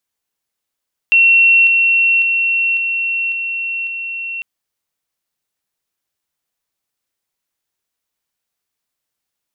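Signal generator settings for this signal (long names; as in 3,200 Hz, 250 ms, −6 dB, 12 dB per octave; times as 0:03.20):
level staircase 2,720 Hz −6.5 dBFS, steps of −3 dB, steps 6, 0.55 s 0.00 s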